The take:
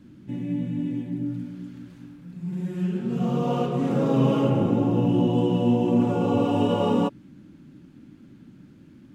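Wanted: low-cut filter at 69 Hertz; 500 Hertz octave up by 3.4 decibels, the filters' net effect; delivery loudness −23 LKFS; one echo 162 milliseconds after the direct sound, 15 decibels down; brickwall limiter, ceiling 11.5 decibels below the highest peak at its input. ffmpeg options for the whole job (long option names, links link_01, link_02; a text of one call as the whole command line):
ffmpeg -i in.wav -af "highpass=69,equalizer=frequency=500:width_type=o:gain=4,alimiter=limit=-19.5dB:level=0:latency=1,aecho=1:1:162:0.178,volume=5dB" out.wav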